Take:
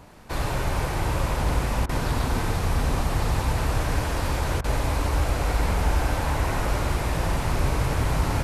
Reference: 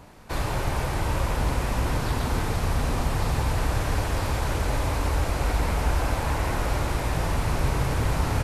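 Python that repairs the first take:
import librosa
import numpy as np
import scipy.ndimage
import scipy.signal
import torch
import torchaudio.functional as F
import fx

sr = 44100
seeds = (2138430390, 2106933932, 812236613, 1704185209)

y = fx.fix_interpolate(x, sr, at_s=(1.86, 4.61), length_ms=30.0)
y = fx.fix_echo_inverse(y, sr, delay_ms=95, level_db=-7.0)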